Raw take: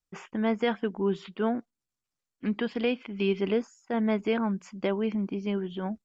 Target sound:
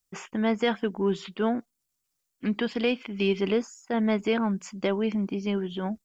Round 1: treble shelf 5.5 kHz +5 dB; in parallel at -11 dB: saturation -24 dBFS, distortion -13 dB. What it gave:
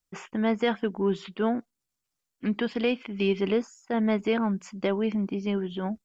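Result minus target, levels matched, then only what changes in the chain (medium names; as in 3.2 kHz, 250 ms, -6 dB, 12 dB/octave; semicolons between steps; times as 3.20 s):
8 kHz band -4.5 dB
change: treble shelf 5.5 kHz +13 dB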